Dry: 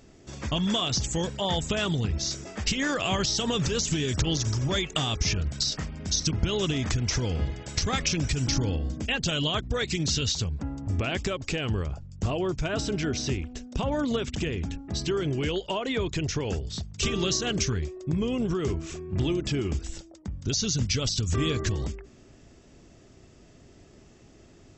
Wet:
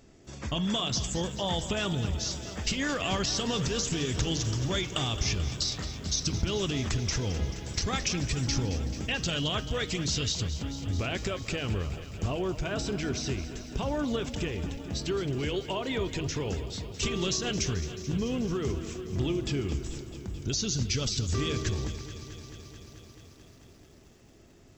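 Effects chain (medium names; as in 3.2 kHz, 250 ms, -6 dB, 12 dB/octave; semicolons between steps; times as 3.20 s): de-hum 157 Hz, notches 33; bit-crushed delay 218 ms, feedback 80%, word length 9-bit, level -13.5 dB; trim -3 dB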